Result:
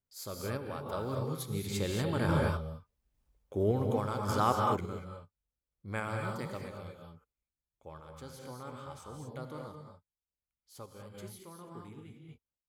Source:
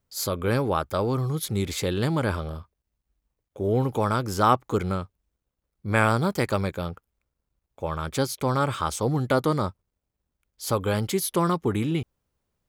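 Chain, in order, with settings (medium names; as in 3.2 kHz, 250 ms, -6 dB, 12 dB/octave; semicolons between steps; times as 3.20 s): Doppler pass-by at 2.98 s, 6 m/s, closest 3.5 m; gated-style reverb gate 260 ms rising, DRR 1 dB; random-step tremolo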